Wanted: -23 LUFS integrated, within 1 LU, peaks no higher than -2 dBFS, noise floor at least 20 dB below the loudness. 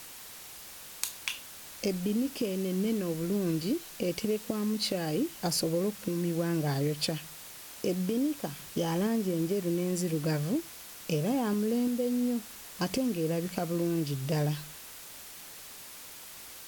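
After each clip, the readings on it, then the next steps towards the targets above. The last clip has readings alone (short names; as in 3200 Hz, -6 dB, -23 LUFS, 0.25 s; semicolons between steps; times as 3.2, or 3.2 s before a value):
noise floor -47 dBFS; noise floor target -51 dBFS; loudness -31.0 LUFS; peak -13.5 dBFS; loudness target -23.0 LUFS
-> denoiser 6 dB, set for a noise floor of -47 dBFS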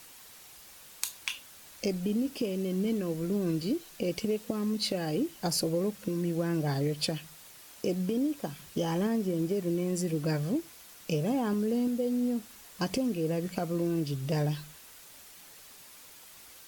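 noise floor -52 dBFS; loudness -31.5 LUFS; peak -13.5 dBFS; loudness target -23.0 LUFS
-> gain +8.5 dB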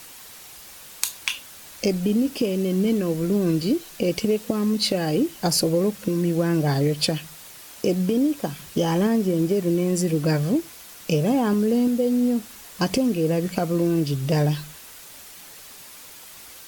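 loudness -23.0 LUFS; peak -5.0 dBFS; noise floor -44 dBFS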